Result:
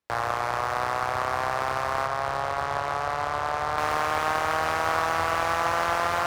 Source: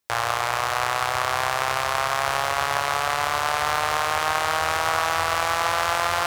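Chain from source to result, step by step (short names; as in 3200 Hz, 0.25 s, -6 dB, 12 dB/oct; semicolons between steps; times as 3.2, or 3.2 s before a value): LPF 1700 Hz 6 dB/oct, from 2.06 s 1000 Hz, from 3.78 s 3900 Hz; one-sided clip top -19 dBFS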